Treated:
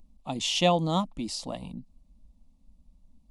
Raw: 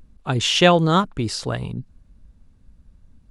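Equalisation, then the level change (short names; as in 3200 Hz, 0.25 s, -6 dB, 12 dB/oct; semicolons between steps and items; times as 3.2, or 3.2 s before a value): fixed phaser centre 410 Hz, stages 6; -5.5 dB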